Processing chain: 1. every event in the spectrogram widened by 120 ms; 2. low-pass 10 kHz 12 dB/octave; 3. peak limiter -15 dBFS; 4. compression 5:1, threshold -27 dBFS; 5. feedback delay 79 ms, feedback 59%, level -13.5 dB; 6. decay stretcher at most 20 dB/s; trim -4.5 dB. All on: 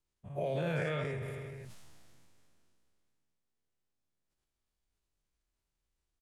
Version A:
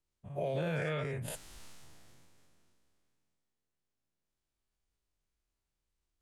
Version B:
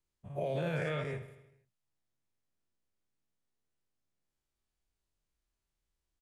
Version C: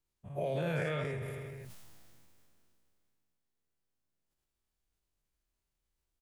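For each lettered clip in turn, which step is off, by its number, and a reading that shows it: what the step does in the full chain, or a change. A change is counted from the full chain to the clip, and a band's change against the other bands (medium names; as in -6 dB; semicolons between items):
5, momentary loudness spread change +6 LU; 6, momentary loudness spread change -4 LU; 2, 8 kHz band +1.5 dB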